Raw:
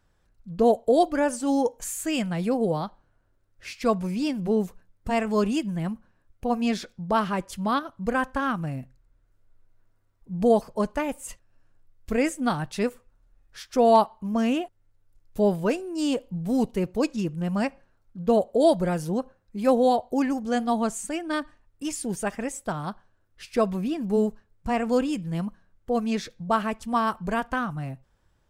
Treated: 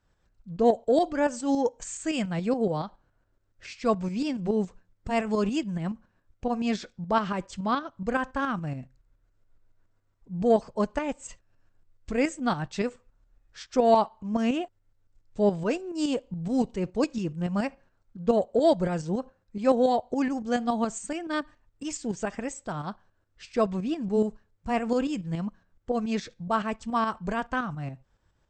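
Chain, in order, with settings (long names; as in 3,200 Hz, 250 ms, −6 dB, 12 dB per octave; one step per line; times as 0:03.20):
linear-phase brick-wall low-pass 8,400 Hz
harmonic generator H 5 −37 dB, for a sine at −6.5 dBFS
shaped tremolo saw up 7.1 Hz, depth 55%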